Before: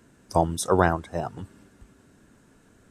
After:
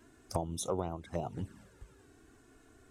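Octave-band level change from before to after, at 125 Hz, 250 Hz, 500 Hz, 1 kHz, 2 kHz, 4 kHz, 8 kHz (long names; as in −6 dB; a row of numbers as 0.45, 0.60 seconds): −10.5, −12.0, −12.5, −15.5, −24.0, −8.5, −8.5 decibels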